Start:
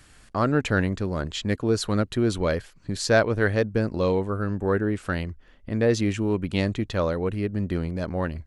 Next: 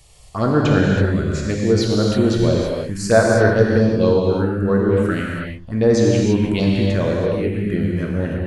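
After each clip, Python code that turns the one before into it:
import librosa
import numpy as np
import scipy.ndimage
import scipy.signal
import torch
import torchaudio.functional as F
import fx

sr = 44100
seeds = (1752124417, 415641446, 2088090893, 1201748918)

y = fx.env_phaser(x, sr, low_hz=250.0, high_hz=3000.0, full_db=-17.0)
y = fx.rev_gated(y, sr, seeds[0], gate_ms=360, shape='flat', drr_db=-2.5)
y = F.gain(torch.from_numpy(y), 4.0).numpy()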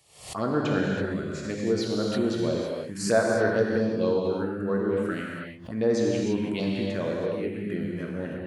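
y = scipy.signal.sosfilt(scipy.signal.butter(2, 170.0, 'highpass', fs=sr, output='sos'), x)
y = fx.peak_eq(y, sr, hz=6300.0, db=-2.0, octaves=0.77)
y = fx.pre_swell(y, sr, db_per_s=100.0)
y = F.gain(torch.from_numpy(y), -8.5).numpy()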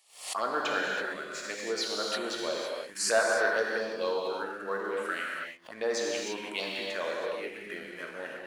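y = scipy.signal.sosfilt(scipy.signal.butter(2, 820.0, 'highpass', fs=sr, output='sos'), x)
y = fx.leveller(y, sr, passes=1)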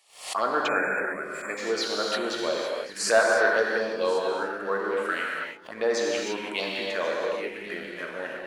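y = fx.spec_erase(x, sr, start_s=0.68, length_s=0.89, low_hz=2600.0, high_hz=7100.0)
y = fx.high_shelf(y, sr, hz=4800.0, db=-6.5)
y = y + 10.0 ** (-18.5 / 20.0) * np.pad(y, (int(1084 * sr / 1000.0), 0))[:len(y)]
y = F.gain(torch.from_numpy(y), 5.5).numpy()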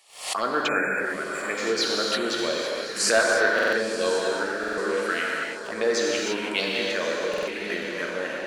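y = fx.dynamic_eq(x, sr, hz=820.0, q=0.81, threshold_db=-37.0, ratio=4.0, max_db=-8)
y = fx.echo_diffused(y, sr, ms=1012, feedback_pct=54, wet_db=-11.5)
y = fx.buffer_glitch(y, sr, at_s=(3.54, 4.59, 7.29), block=2048, repeats=3)
y = F.gain(torch.from_numpy(y), 5.0).numpy()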